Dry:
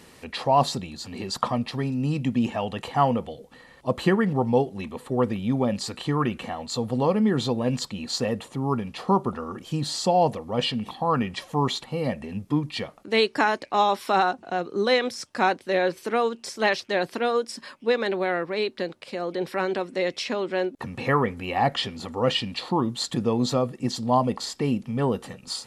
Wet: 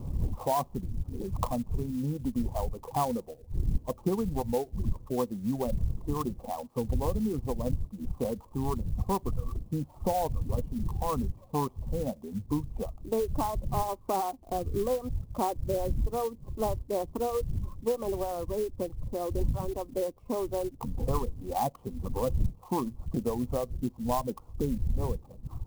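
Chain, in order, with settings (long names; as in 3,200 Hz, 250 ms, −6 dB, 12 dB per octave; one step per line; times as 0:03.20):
wind on the microphone 80 Hz −24 dBFS
elliptic low-pass filter 1,100 Hz, stop band 40 dB
downward compressor 2.5 to 1, threshold −27 dBFS, peak gain reduction 13.5 dB
reverb reduction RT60 1.7 s
converter with an unsteady clock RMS 0.041 ms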